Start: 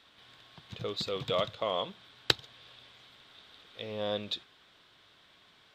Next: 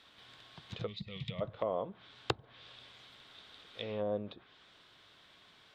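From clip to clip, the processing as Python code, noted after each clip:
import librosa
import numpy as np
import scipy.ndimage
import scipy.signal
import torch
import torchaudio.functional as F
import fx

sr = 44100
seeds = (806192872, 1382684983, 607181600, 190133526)

y = fx.spec_box(x, sr, start_s=0.87, length_s=0.54, low_hz=230.0, high_hz=1800.0, gain_db=-18)
y = fx.env_lowpass_down(y, sr, base_hz=750.0, full_db=-31.0)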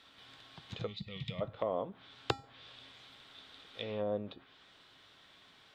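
y = fx.comb_fb(x, sr, f0_hz=270.0, decay_s=0.39, harmonics='odd', damping=0.0, mix_pct=70)
y = y * librosa.db_to_amplitude(10.0)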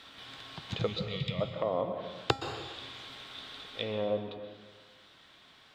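y = fx.rider(x, sr, range_db=4, speed_s=0.5)
y = fx.rev_plate(y, sr, seeds[0], rt60_s=1.4, hf_ratio=0.95, predelay_ms=110, drr_db=6.5)
y = y * librosa.db_to_amplitude(5.0)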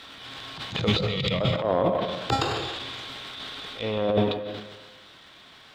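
y = fx.transient(x, sr, attack_db=-11, sustain_db=11)
y = y * librosa.db_to_amplitude(8.0)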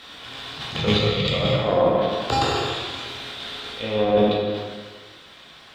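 y = fx.rev_plate(x, sr, seeds[1], rt60_s=1.2, hf_ratio=0.95, predelay_ms=0, drr_db=-2.0)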